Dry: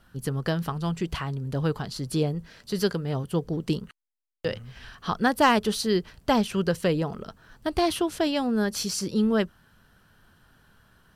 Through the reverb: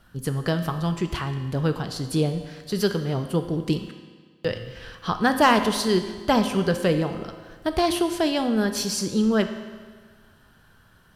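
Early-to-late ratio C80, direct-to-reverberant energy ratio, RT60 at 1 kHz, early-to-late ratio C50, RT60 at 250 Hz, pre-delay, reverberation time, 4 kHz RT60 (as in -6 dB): 10.5 dB, 7.0 dB, 1.6 s, 9.0 dB, 1.6 s, 4 ms, 1.6 s, 1.4 s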